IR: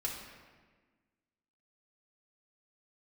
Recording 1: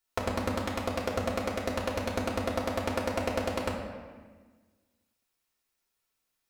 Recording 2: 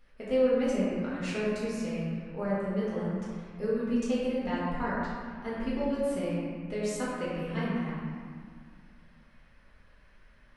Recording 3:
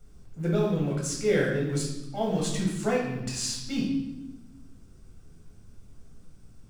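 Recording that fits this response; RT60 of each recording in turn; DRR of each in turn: 1; 1.4, 2.1, 0.95 seconds; −3.5, −9.0, −3.5 decibels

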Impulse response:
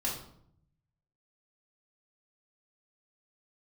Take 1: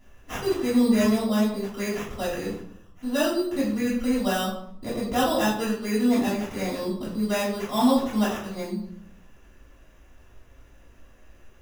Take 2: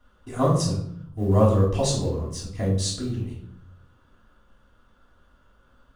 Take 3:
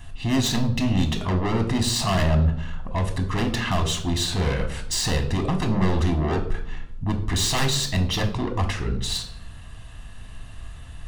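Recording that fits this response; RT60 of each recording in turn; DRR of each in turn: 2; 0.65, 0.65, 0.70 seconds; −10.0, −5.0, 5.0 decibels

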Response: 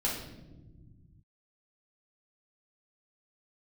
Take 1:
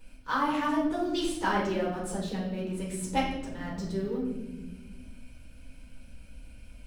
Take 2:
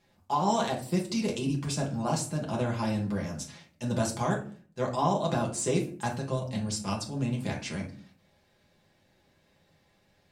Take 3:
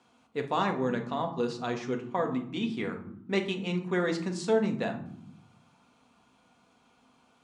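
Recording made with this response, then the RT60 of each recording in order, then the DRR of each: 1; non-exponential decay, 0.45 s, 0.80 s; −6.0, −2.5, 3.0 decibels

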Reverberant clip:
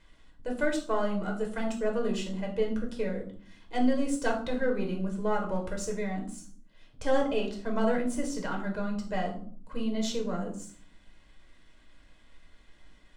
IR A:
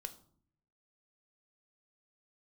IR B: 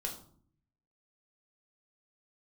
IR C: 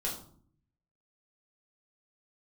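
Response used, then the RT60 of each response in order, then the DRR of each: B; 0.55, 0.55, 0.55 seconds; 8.5, 0.5, −4.0 decibels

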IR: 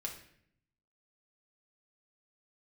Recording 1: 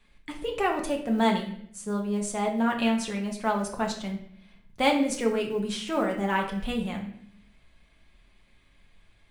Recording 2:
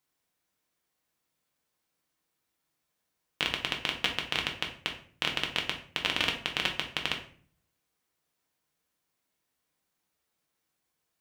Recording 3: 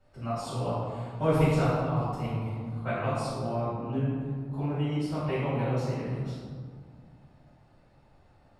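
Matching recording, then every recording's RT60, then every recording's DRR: 1; 0.65, 0.50, 1.9 seconds; 0.0, 1.0, −14.0 decibels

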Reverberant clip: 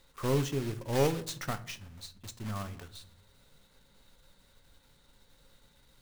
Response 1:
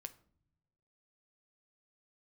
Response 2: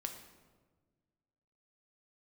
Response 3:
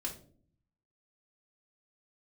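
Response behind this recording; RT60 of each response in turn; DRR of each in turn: 1; non-exponential decay, 1.4 s, 0.50 s; 9.0, 4.0, −1.5 decibels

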